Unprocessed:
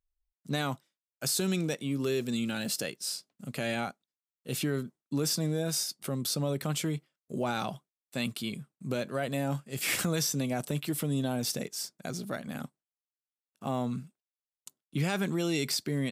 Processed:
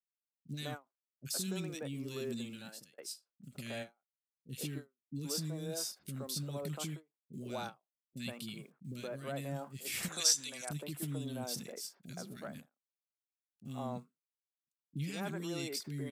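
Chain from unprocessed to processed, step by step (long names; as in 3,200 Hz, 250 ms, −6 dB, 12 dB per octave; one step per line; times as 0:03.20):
0:10.08–0:10.65: meter weighting curve ITU-R 468
bit reduction 11 bits
three-band delay without the direct sound lows, highs, mids 40/120 ms, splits 310/1,900 Hz
0:02.33–0:02.98: fade out
every ending faded ahead of time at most 320 dB per second
level −7.5 dB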